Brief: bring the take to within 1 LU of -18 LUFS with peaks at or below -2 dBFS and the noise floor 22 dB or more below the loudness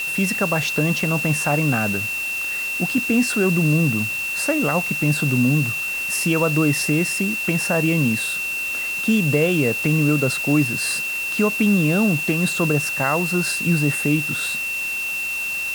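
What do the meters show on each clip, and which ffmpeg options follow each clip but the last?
steady tone 2700 Hz; tone level -23 dBFS; noise floor -26 dBFS; noise floor target -42 dBFS; loudness -19.5 LUFS; peak -6.0 dBFS; loudness target -18.0 LUFS
-> -af "bandreject=f=2.7k:w=30"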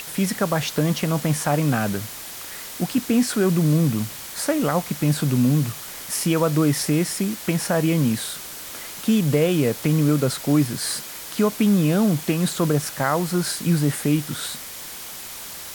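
steady tone none; noise floor -36 dBFS; noise floor target -44 dBFS
-> -af "afftdn=nr=8:nf=-36"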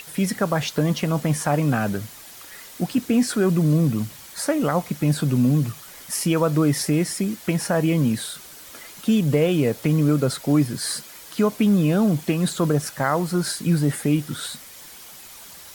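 noise floor -43 dBFS; noise floor target -44 dBFS
-> -af "afftdn=nr=6:nf=-43"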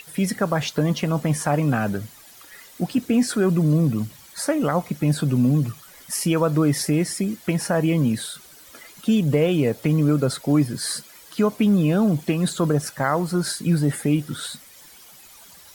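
noise floor -47 dBFS; loudness -22.0 LUFS; peak -7.5 dBFS; loudness target -18.0 LUFS
-> -af "volume=4dB"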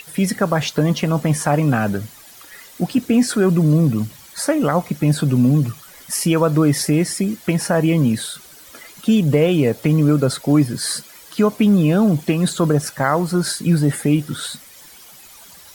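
loudness -18.0 LUFS; peak -3.5 dBFS; noise floor -43 dBFS

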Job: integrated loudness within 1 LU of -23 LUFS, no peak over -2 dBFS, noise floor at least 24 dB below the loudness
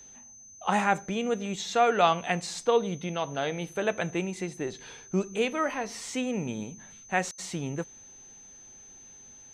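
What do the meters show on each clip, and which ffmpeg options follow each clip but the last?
steady tone 6200 Hz; tone level -48 dBFS; loudness -29.5 LUFS; peak -9.0 dBFS; loudness target -23.0 LUFS
-> -af "bandreject=f=6.2k:w=30"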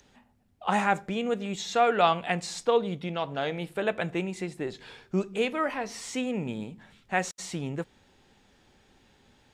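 steady tone none; loudness -29.5 LUFS; peak -9.0 dBFS; loudness target -23.0 LUFS
-> -af "volume=6.5dB"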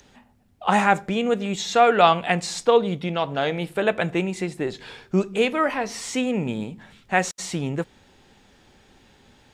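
loudness -23.0 LUFS; peak -2.5 dBFS; noise floor -57 dBFS

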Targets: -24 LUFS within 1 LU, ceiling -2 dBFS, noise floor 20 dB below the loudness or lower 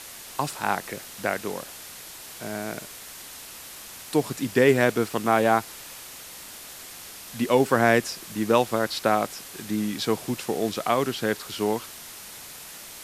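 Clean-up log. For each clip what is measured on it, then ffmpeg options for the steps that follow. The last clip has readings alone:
noise floor -42 dBFS; noise floor target -45 dBFS; loudness -25.0 LUFS; peak -4.5 dBFS; loudness target -24.0 LUFS
-> -af "afftdn=nr=6:nf=-42"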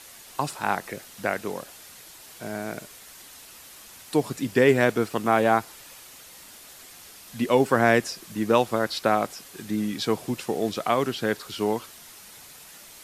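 noise floor -47 dBFS; loudness -25.0 LUFS; peak -4.5 dBFS; loudness target -24.0 LUFS
-> -af "volume=1dB"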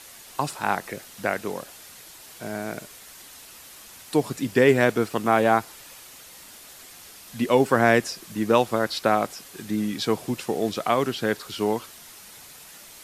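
loudness -24.0 LUFS; peak -3.5 dBFS; noise floor -46 dBFS

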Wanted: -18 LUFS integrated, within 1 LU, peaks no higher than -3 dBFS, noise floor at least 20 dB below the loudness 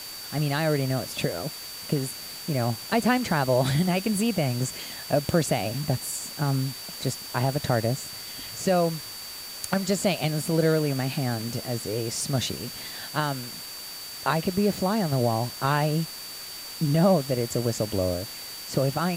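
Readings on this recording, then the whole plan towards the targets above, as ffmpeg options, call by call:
steady tone 4600 Hz; tone level -39 dBFS; noise floor -39 dBFS; noise floor target -47 dBFS; loudness -27.0 LUFS; peak -9.5 dBFS; loudness target -18.0 LUFS
-> -af "bandreject=f=4.6k:w=30"
-af "afftdn=nr=8:nf=-39"
-af "volume=9dB,alimiter=limit=-3dB:level=0:latency=1"

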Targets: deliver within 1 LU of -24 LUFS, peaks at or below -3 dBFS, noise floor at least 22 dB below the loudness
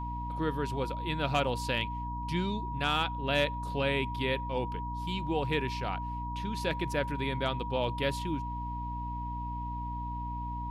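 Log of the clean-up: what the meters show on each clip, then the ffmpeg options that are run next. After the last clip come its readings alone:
hum 60 Hz; harmonics up to 300 Hz; hum level -35 dBFS; steady tone 960 Hz; tone level -37 dBFS; loudness -33.0 LUFS; peak -16.0 dBFS; loudness target -24.0 LUFS
-> -af "bandreject=f=60:t=h:w=6,bandreject=f=120:t=h:w=6,bandreject=f=180:t=h:w=6,bandreject=f=240:t=h:w=6,bandreject=f=300:t=h:w=6"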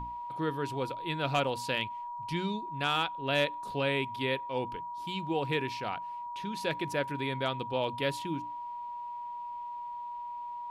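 hum none; steady tone 960 Hz; tone level -37 dBFS
-> -af "bandreject=f=960:w=30"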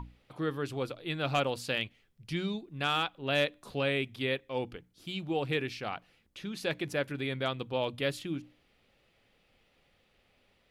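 steady tone none; loudness -33.5 LUFS; peak -18.0 dBFS; loudness target -24.0 LUFS
-> -af "volume=9.5dB"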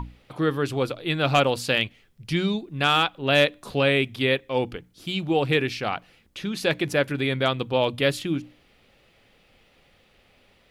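loudness -24.0 LUFS; peak -8.5 dBFS; noise floor -60 dBFS

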